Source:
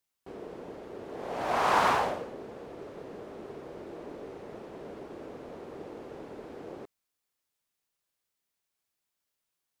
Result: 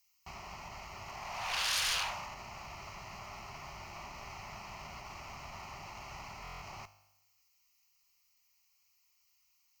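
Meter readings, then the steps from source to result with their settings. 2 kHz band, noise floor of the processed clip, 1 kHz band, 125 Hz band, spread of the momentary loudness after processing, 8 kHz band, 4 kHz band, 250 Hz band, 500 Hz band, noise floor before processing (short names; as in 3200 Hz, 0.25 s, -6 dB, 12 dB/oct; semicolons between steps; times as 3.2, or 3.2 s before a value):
-3.0 dB, -73 dBFS, -11.0 dB, -2.5 dB, 15 LU, +8.5 dB, +6.5 dB, -15.5 dB, -16.5 dB, -85 dBFS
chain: fixed phaser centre 2400 Hz, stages 8; resonator 50 Hz, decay 0.95 s, harmonics all, mix 50%; sine folder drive 18 dB, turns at -18 dBFS; limiter -24 dBFS, peak gain reduction 6 dB; passive tone stack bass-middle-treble 10-0-10; notch 7700 Hz, Q 6.7; added harmonics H 8 -29 dB, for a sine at -22 dBFS; stuck buffer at 6.43, samples 1024, times 7; gain -1 dB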